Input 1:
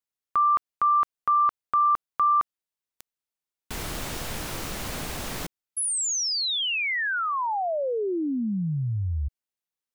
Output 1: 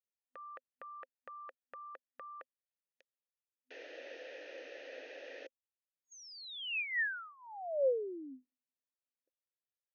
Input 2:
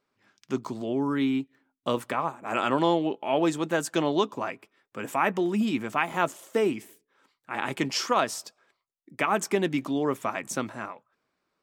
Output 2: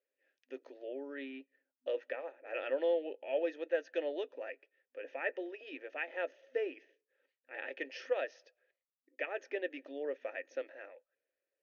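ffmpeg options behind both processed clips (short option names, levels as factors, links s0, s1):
-filter_complex "[0:a]afftfilt=real='re*between(b*sr/4096,250,6600)':imag='im*between(b*sr/4096,250,6600)':win_size=4096:overlap=0.75,adynamicequalizer=threshold=0.0158:dfrequency=1300:dqfactor=0.79:tfrequency=1300:tqfactor=0.79:attack=5:release=100:ratio=0.375:range=2:mode=boostabove:tftype=bell,asplit=3[s0][s1][s2];[s0]bandpass=f=530:t=q:w=8,volume=1[s3];[s1]bandpass=f=1840:t=q:w=8,volume=0.501[s4];[s2]bandpass=f=2480:t=q:w=8,volume=0.355[s5];[s3][s4][s5]amix=inputs=3:normalize=0,volume=0.841"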